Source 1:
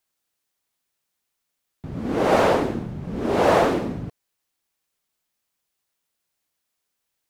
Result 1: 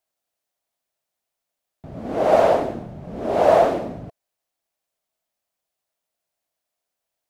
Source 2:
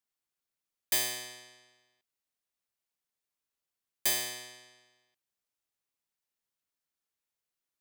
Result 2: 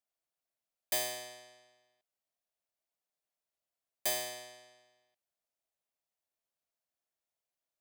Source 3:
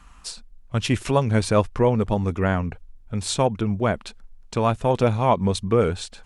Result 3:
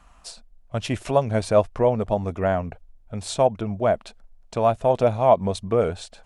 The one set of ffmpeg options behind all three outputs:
-af "equalizer=f=650:t=o:w=0.58:g=12.5,volume=-5dB"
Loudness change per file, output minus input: +2.5, -5.0, 0.0 LU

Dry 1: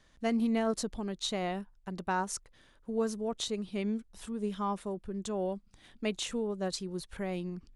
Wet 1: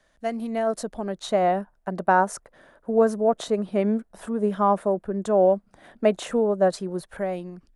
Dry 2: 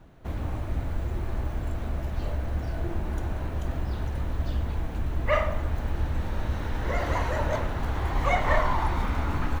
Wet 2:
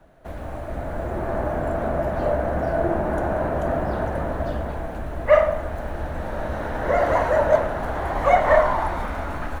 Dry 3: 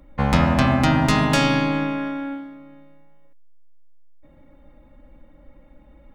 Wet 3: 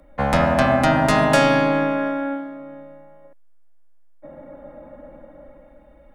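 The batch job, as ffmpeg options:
-filter_complex "[0:a]equalizer=f=100:t=o:w=0.67:g=-5,equalizer=f=630:t=o:w=0.67:g=11,equalizer=f=1.6k:t=o:w=0.67:g=6,equalizer=f=10k:t=o:w=0.67:g=7,acrossover=split=100|1700[a][b][c];[b]dynaudnorm=f=220:g=9:m=12.5dB[d];[a][d][c]amix=inputs=3:normalize=0,volume=-3dB"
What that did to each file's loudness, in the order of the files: +10.5, +6.5, +1.5 LU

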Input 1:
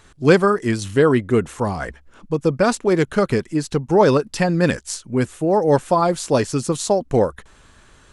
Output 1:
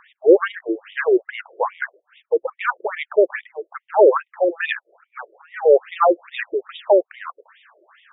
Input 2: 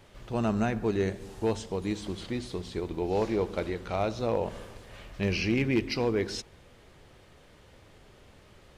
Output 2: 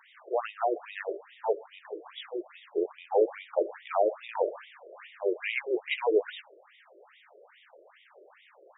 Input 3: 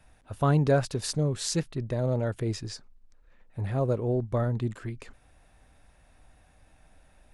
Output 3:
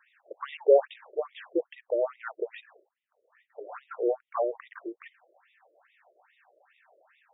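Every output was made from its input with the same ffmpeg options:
-af "acontrast=83,aeval=exprs='val(0)+0.0141*(sin(2*PI*50*n/s)+sin(2*PI*2*50*n/s)/2+sin(2*PI*3*50*n/s)/3+sin(2*PI*4*50*n/s)/4+sin(2*PI*5*50*n/s)/5)':c=same,afftfilt=real='re*between(b*sr/1024,450*pow(2700/450,0.5+0.5*sin(2*PI*2.4*pts/sr))/1.41,450*pow(2700/450,0.5+0.5*sin(2*PI*2.4*pts/sr))*1.41)':imag='im*between(b*sr/1024,450*pow(2700/450,0.5+0.5*sin(2*PI*2.4*pts/sr))/1.41,450*pow(2700/450,0.5+0.5*sin(2*PI*2.4*pts/sr))*1.41)':win_size=1024:overlap=0.75"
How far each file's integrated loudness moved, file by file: -0.5, -1.0, -1.0 LU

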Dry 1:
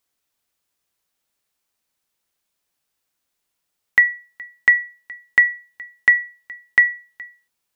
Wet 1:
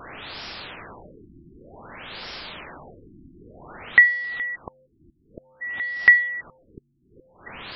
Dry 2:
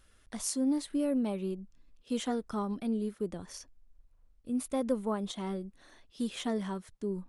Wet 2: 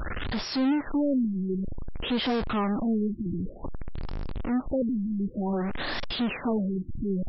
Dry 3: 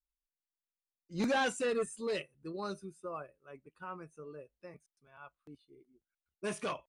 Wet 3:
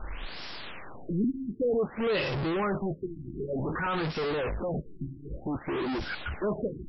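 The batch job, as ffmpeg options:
-af "aeval=exprs='val(0)+0.5*0.0631*sgn(val(0))':c=same,afftfilt=real='re*lt(b*sr/1024,350*pow(5700/350,0.5+0.5*sin(2*PI*0.54*pts/sr)))':imag='im*lt(b*sr/1024,350*pow(5700/350,0.5+0.5*sin(2*PI*0.54*pts/sr)))':win_size=1024:overlap=0.75"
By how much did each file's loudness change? -1.5, +5.0, +5.5 LU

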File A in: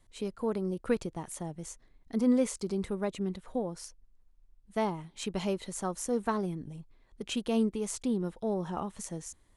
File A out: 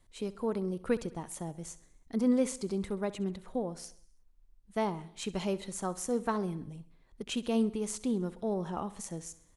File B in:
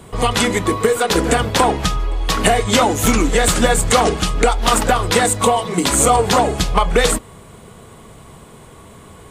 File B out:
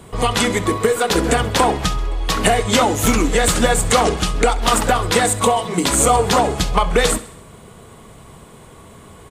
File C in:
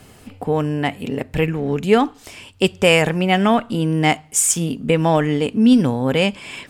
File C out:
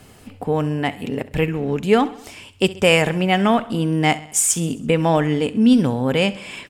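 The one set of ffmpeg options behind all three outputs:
-af "aecho=1:1:66|132|198|264|330:0.126|0.0692|0.0381|0.0209|0.0115,volume=-1dB"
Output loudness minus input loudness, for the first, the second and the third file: -1.0, -1.0, -1.0 LU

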